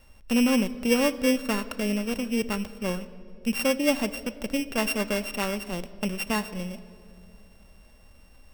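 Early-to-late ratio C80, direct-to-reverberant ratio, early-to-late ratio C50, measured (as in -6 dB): 16.5 dB, 11.5 dB, 15.5 dB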